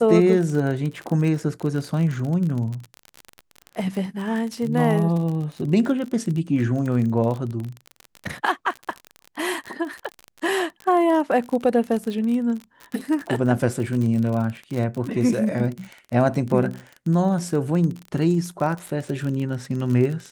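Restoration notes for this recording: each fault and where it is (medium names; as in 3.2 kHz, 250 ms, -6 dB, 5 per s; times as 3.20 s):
crackle 38 per s -27 dBFS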